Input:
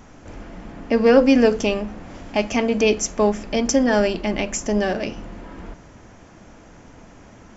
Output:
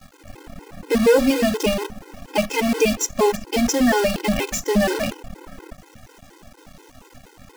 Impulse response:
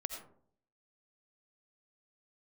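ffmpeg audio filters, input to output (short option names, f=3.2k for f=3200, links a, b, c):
-filter_complex "[0:a]asplit=2[a][b];[b]alimiter=limit=-11dB:level=0:latency=1:release=206,volume=3dB[c];[a][c]amix=inputs=2:normalize=0,acrusher=bits=4:dc=4:mix=0:aa=0.000001,afftfilt=real='re*gt(sin(2*PI*4.2*pts/sr)*(1-2*mod(floor(b*sr/1024/270),2)),0)':imag='im*gt(sin(2*PI*4.2*pts/sr)*(1-2*mod(floor(b*sr/1024/270),2)),0)':win_size=1024:overlap=0.75,volume=-3dB"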